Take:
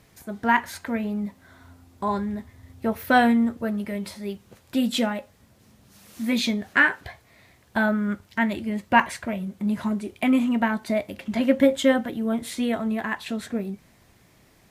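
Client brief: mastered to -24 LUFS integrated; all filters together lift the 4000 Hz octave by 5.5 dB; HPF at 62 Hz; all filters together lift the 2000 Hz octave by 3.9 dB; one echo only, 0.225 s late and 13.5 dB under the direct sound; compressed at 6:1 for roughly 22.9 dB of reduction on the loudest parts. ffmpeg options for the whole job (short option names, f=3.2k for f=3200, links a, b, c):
-af "highpass=62,equalizer=f=2k:t=o:g=4,equalizer=f=4k:t=o:g=5.5,acompressor=threshold=-36dB:ratio=6,aecho=1:1:225:0.211,volume=15dB"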